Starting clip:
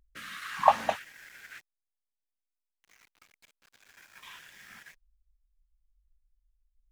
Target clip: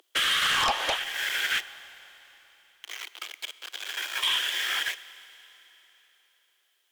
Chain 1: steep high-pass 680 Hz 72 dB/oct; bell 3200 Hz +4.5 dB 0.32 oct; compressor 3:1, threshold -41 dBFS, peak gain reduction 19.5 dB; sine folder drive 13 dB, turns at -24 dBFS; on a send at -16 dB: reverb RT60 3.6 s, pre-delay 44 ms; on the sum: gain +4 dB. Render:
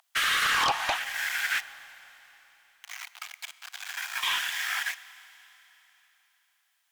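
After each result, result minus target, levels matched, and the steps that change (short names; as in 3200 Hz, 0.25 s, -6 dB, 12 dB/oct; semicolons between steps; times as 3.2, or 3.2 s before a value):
4000 Hz band -4.0 dB; 500 Hz band -3.0 dB
change: bell 3200 Hz +14 dB 0.32 oct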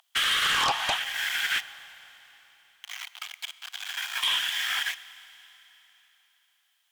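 500 Hz band -4.0 dB
change: steep high-pass 320 Hz 72 dB/oct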